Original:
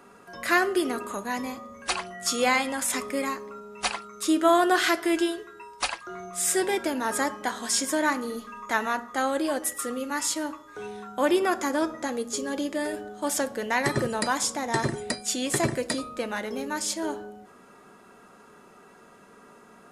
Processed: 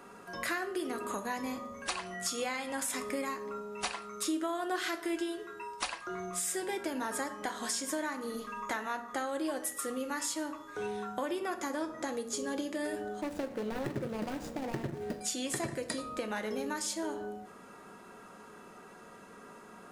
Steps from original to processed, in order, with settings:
0:13.21–0:15.21: running median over 41 samples
downward compressor 6 to 1, threshold −33 dBFS, peak gain reduction 16.5 dB
dense smooth reverb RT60 0.55 s, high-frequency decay 0.75×, DRR 9.5 dB

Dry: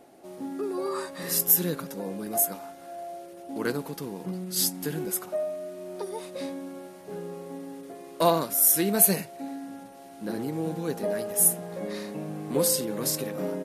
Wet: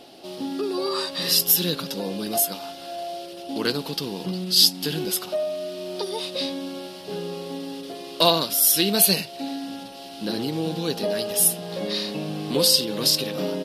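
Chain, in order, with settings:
flat-topped bell 3,800 Hz +14.5 dB 1.2 octaves
in parallel at 0 dB: downward compressor, threshold −32 dBFS, peak gain reduction 18 dB

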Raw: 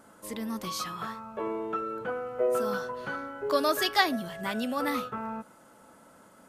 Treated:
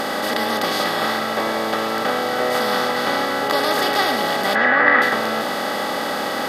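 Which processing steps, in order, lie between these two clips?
compressor on every frequency bin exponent 0.2
0:04.55–0:05.02: low-pass with resonance 1,800 Hz, resonance Q 5.1
on a send: convolution reverb, pre-delay 98 ms, DRR 7 dB
on the sum: level −1 dB

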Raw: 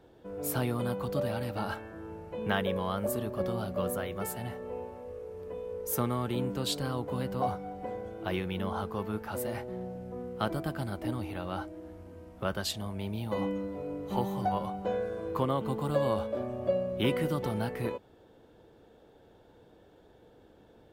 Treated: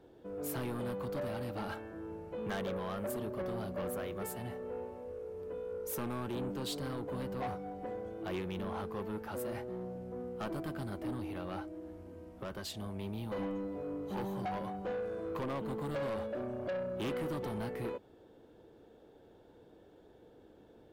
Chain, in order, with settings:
parametric band 340 Hz +5 dB 1.3 octaves
soft clipping −29 dBFS, distortion −9 dB
0:11.59–0:12.77: downward compressor 3 to 1, threshold −36 dBFS, peak gain reduction 4 dB
level −4 dB

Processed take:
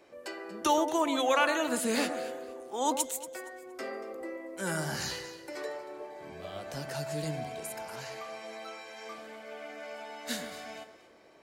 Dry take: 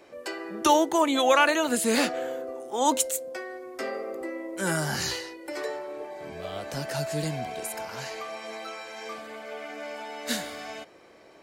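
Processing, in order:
delay that swaps between a low-pass and a high-pass 117 ms, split 1,800 Hz, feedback 51%, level −8.5 dB
level −6 dB

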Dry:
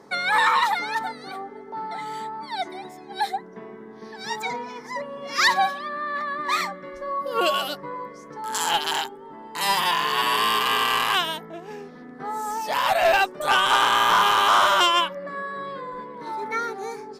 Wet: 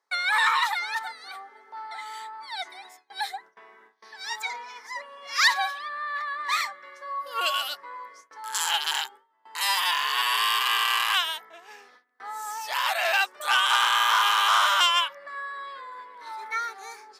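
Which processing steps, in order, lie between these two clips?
noise gate with hold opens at −32 dBFS
high-pass filter 1,200 Hz 12 dB per octave

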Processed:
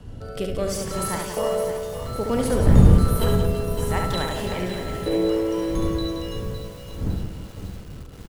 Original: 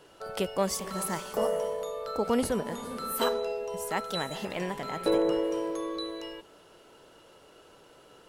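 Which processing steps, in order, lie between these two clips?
wind on the microphone 120 Hz −29 dBFS
rotating-speaker cabinet horn 0.65 Hz
double-tracking delay 39 ms −11.5 dB
reverse bouncing-ball delay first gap 70 ms, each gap 1.5×, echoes 5
feedback echo at a low word length 558 ms, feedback 55%, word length 7 bits, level −10 dB
level +3.5 dB

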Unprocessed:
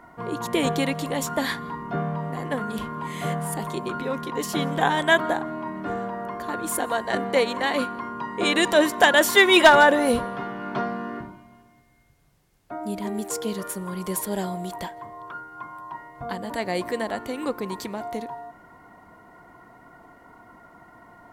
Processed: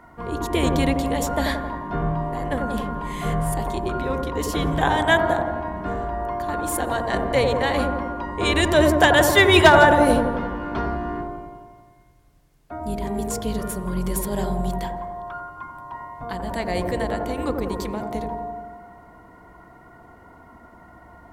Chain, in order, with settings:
sub-octave generator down 2 octaves, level −1 dB
on a send: delay with a low-pass on its return 88 ms, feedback 65%, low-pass 990 Hz, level −3 dB

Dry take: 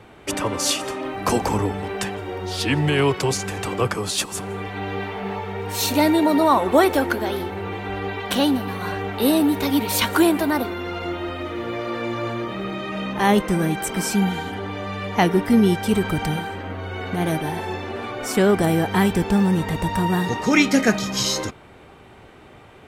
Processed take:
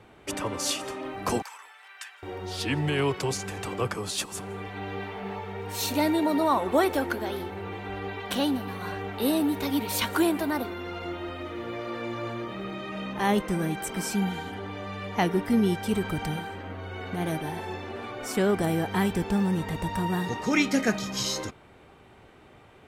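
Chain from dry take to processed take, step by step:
0:01.42–0:02.23: four-pole ladder high-pass 1,100 Hz, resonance 25%
level −7 dB

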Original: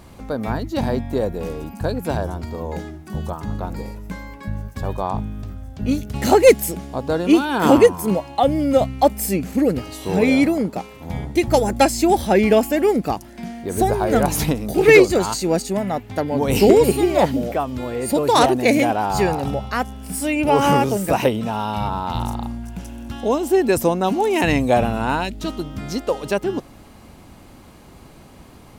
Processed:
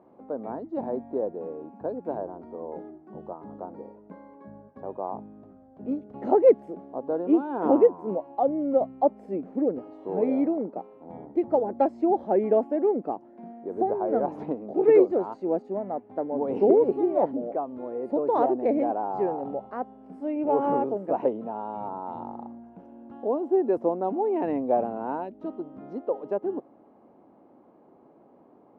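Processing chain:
flat-topped band-pass 480 Hz, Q 0.8
level −6 dB

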